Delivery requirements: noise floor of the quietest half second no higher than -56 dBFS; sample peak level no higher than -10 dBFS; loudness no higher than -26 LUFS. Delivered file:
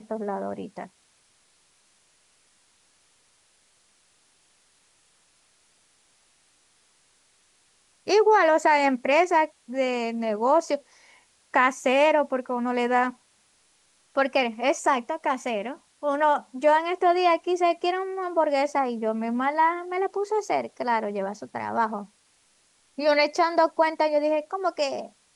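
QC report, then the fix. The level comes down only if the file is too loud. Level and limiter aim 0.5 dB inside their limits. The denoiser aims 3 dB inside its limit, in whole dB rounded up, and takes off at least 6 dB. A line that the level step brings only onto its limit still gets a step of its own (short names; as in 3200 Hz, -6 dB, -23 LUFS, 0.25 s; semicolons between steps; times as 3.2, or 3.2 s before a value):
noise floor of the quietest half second -64 dBFS: OK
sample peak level -7.5 dBFS: fail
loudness -24.0 LUFS: fail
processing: gain -2.5 dB; limiter -10.5 dBFS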